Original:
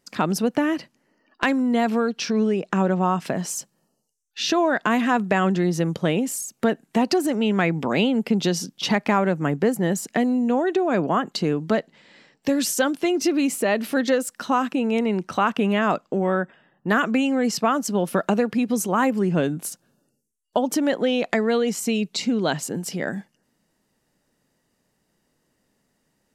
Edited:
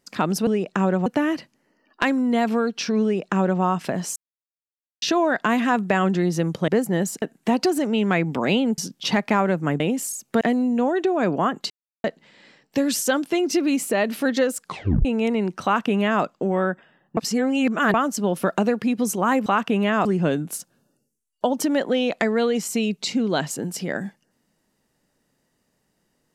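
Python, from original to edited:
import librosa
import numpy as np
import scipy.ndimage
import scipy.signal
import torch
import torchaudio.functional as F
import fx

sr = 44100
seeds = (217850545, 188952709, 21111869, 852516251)

y = fx.edit(x, sr, fx.duplicate(start_s=2.44, length_s=0.59, to_s=0.47),
    fx.silence(start_s=3.57, length_s=0.86),
    fx.swap(start_s=6.09, length_s=0.61, other_s=9.58, other_length_s=0.54),
    fx.cut(start_s=8.26, length_s=0.3),
    fx.silence(start_s=11.41, length_s=0.34),
    fx.tape_stop(start_s=14.31, length_s=0.45),
    fx.duplicate(start_s=15.35, length_s=0.59, to_s=19.17),
    fx.reverse_span(start_s=16.88, length_s=0.77), tone=tone)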